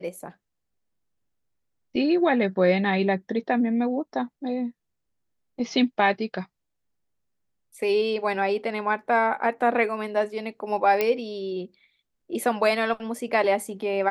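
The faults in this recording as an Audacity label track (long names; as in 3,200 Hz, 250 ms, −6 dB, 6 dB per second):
11.010000	11.010000	click −10 dBFS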